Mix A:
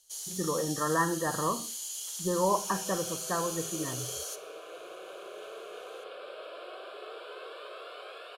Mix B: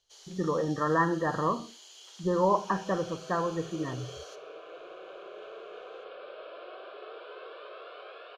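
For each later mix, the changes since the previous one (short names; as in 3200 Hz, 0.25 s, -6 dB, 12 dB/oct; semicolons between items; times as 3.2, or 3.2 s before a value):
speech +3.0 dB; master: add air absorption 210 m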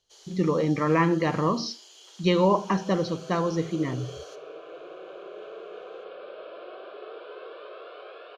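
speech: remove brick-wall FIR low-pass 1900 Hz; master: add bell 210 Hz +8 dB 2.4 oct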